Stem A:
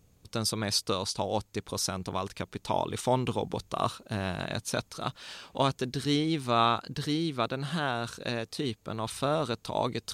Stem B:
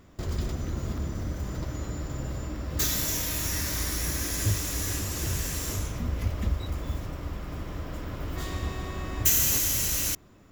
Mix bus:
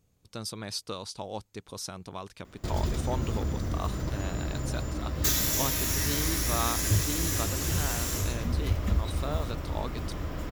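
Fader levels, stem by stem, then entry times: −7.0, +1.0 decibels; 0.00, 2.45 seconds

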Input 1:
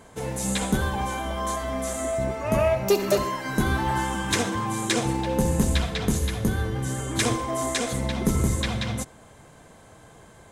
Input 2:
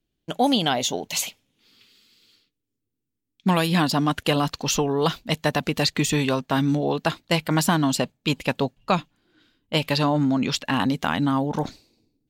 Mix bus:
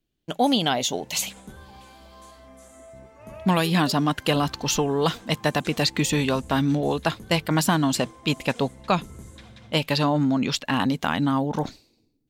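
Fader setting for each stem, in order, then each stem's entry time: −19.5, −0.5 decibels; 0.75, 0.00 seconds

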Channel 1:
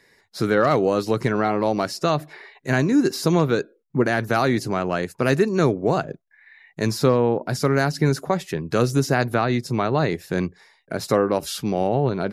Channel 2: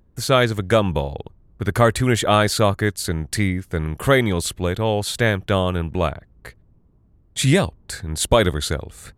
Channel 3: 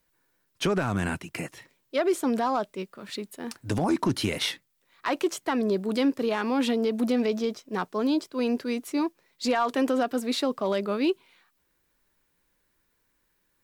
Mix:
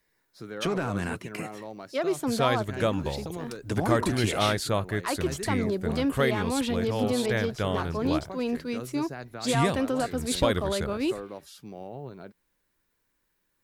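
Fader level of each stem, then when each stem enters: −19.0, −9.5, −3.0 decibels; 0.00, 2.10, 0.00 seconds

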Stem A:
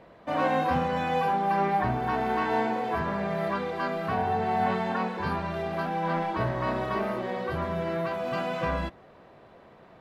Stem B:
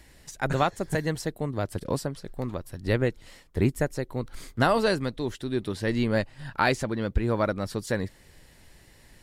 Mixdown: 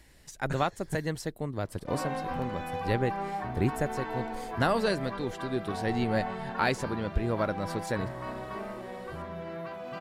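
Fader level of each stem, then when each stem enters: −9.0, −4.0 decibels; 1.60, 0.00 seconds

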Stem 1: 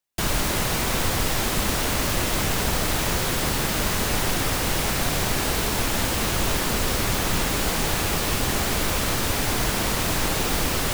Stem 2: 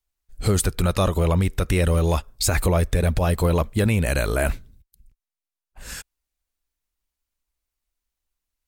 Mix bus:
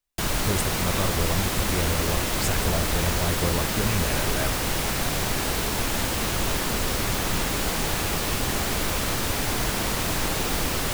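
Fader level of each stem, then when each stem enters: −2.0, −8.0 decibels; 0.00, 0.00 seconds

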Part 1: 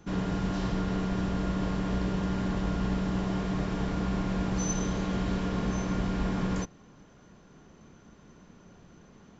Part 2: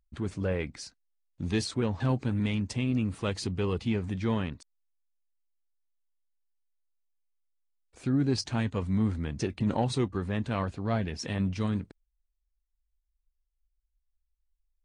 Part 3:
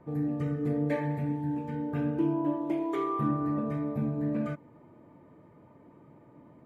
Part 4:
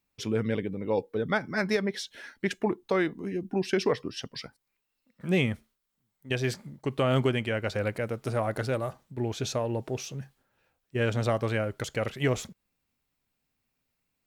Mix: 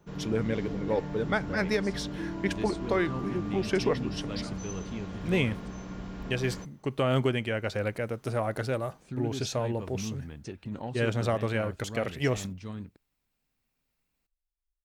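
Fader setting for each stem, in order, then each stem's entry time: −10.0, −9.5, −9.5, −1.0 decibels; 0.00, 1.05, 0.00, 0.00 seconds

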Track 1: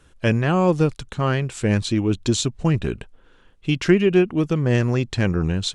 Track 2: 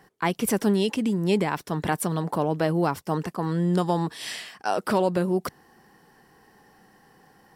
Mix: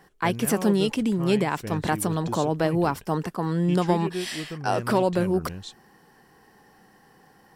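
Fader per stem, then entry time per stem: −14.5, +0.5 decibels; 0.00, 0.00 seconds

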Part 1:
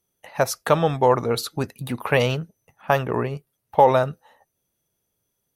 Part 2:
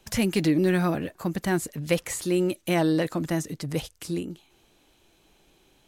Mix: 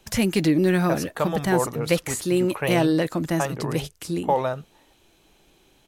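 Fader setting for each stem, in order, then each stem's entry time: −7.0, +2.5 decibels; 0.50, 0.00 seconds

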